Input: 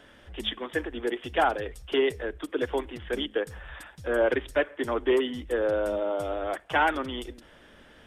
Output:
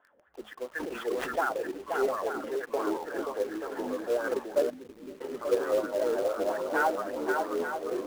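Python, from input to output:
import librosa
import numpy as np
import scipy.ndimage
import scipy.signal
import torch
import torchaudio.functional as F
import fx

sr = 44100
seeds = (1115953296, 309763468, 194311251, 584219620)

p1 = fx.wah_lfo(x, sr, hz=4.3, low_hz=490.0, high_hz=1600.0, q=3.6)
p2 = p1 + fx.echo_swing(p1, sr, ms=882, ratio=1.5, feedback_pct=39, wet_db=-4.5, dry=0)
p3 = fx.echo_pitch(p2, sr, ms=336, semitones=-4, count=2, db_per_echo=-6.0)
p4 = fx.cheby1_bandstop(p3, sr, low_hz=190.0, high_hz=6200.0, order=2, at=(4.69, 5.2), fade=0.02)
p5 = fx.spacing_loss(p4, sr, db_at_10k=32)
p6 = fx.highpass(p5, sr, hz=130.0, slope=24, at=(2.44, 3.03))
p7 = fx.quant_companded(p6, sr, bits=4)
p8 = p6 + (p7 * 10.0 ** (-3.0 / 20.0))
y = fx.sustainer(p8, sr, db_per_s=29.0, at=(0.73, 1.4))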